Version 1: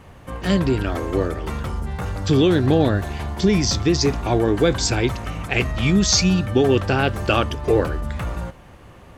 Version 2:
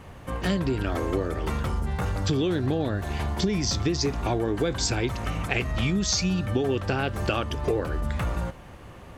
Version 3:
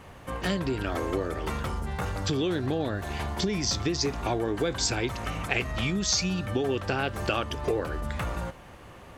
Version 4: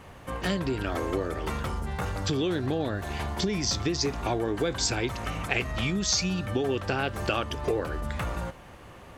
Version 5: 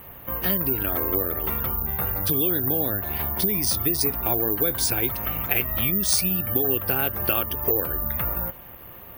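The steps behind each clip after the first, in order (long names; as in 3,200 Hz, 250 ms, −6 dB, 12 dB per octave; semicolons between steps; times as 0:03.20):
downward compressor, threshold −22 dBFS, peak gain reduction 10.5 dB
low-shelf EQ 300 Hz −5.5 dB
no processing that can be heard
gate on every frequency bin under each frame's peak −30 dB strong; bad sample-rate conversion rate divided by 3×, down filtered, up zero stuff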